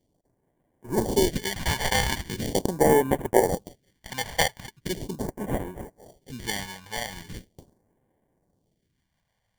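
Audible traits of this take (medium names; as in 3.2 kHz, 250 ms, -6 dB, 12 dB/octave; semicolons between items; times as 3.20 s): aliases and images of a low sample rate 1.3 kHz, jitter 0%; phasing stages 2, 0.4 Hz, lowest notch 320–4500 Hz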